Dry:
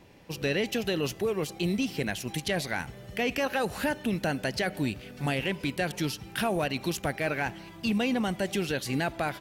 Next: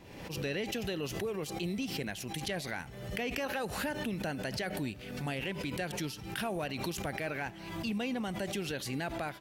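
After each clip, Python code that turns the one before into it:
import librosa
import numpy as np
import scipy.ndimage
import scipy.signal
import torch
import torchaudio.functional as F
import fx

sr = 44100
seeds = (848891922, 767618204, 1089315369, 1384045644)

y = fx.pre_swell(x, sr, db_per_s=49.0)
y = y * 10.0 ** (-7.5 / 20.0)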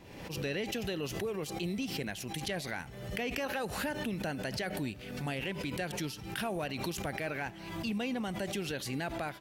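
y = x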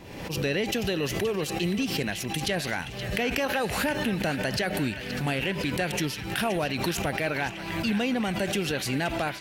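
y = fx.echo_banded(x, sr, ms=524, feedback_pct=79, hz=2400.0, wet_db=-8.5)
y = y * 10.0 ** (8.0 / 20.0)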